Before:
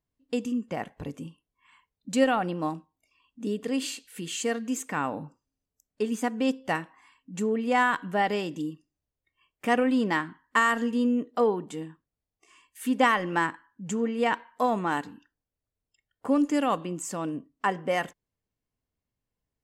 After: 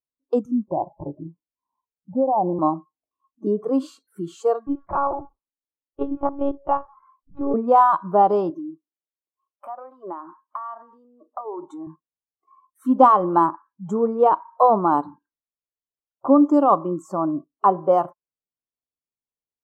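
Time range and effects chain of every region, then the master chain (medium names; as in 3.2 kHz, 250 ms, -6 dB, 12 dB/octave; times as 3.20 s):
0.68–2.59 s: steep low-pass 1 kHz 96 dB/octave + compression 4:1, threshold -25 dBFS
4.67–7.54 s: bass shelf 270 Hz -3.5 dB + monotone LPC vocoder at 8 kHz 280 Hz
8.50–11.87 s: high-pass 310 Hz + compression, threshold -37 dBFS
whole clip: spectral noise reduction 24 dB; FFT filter 100 Hz 0 dB, 340 Hz +10 dB, 1.2 kHz +11 dB, 1.9 kHz -24 dB, 3.8 kHz -10 dB, 8.4 kHz -15 dB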